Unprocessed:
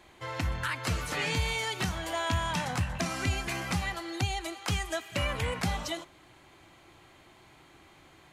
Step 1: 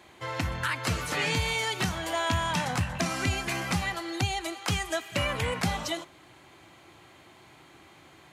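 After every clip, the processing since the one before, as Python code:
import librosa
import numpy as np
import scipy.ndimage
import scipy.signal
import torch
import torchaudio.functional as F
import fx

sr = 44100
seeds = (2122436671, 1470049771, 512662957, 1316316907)

y = scipy.signal.sosfilt(scipy.signal.butter(2, 81.0, 'highpass', fs=sr, output='sos'), x)
y = y * 10.0 ** (3.0 / 20.0)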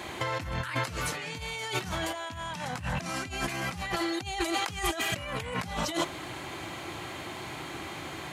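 y = fx.over_compress(x, sr, threshold_db=-40.0, ratio=-1.0)
y = y * 10.0 ** (6.0 / 20.0)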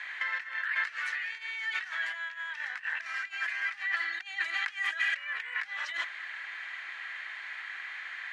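y = fx.ladder_bandpass(x, sr, hz=1900.0, resonance_pct=75)
y = y * 10.0 ** (8.5 / 20.0)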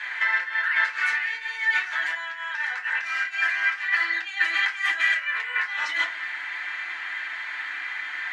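y = fx.rev_fdn(x, sr, rt60_s=0.32, lf_ratio=1.0, hf_ratio=0.6, size_ms=20.0, drr_db=-3.5)
y = y * 10.0 ** (4.0 / 20.0)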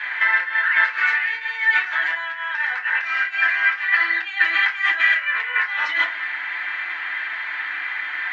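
y = fx.bandpass_edges(x, sr, low_hz=180.0, high_hz=3300.0)
y = y * 10.0 ** (5.5 / 20.0)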